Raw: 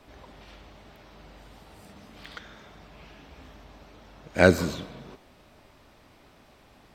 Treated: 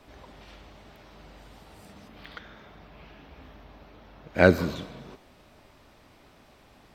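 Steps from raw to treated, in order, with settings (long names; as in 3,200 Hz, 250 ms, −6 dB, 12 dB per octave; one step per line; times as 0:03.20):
0:02.08–0:04.76: parametric band 7,900 Hz −12 dB 1.1 octaves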